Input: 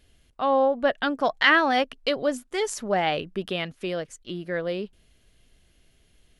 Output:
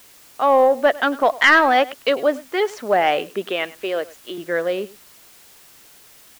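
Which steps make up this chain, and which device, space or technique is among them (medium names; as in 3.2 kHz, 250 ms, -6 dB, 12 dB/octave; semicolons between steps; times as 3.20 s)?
3.49–4.38 s: high-pass 270 Hz; tape answering machine (band-pass 340–2900 Hz; saturation -11.5 dBFS, distortion -19 dB; wow and flutter; white noise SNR 28 dB); delay 101 ms -20 dB; trim +8 dB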